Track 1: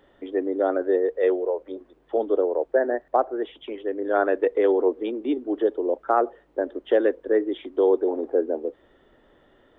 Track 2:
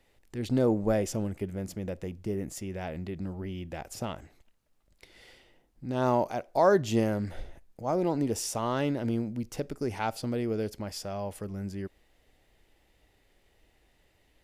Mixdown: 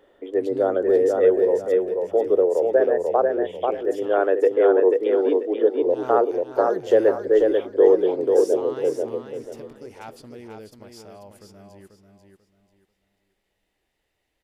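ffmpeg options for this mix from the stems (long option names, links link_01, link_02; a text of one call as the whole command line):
ffmpeg -i stem1.wav -i stem2.wav -filter_complex "[0:a]equalizer=frequency=460:width=1.7:gain=8,volume=-2dB,asplit=2[link_01][link_02];[link_02]volume=-3.5dB[link_03];[1:a]volume=-8dB,asplit=2[link_04][link_05];[link_05]volume=-6dB[link_06];[link_03][link_06]amix=inputs=2:normalize=0,aecho=0:1:490|980|1470|1960:1|0.28|0.0784|0.022[link_07];[link_01][link_04][link_07]amix=inputs=3:normalize=0,lowshelf=frequency=210:gain=-7.5" out.wav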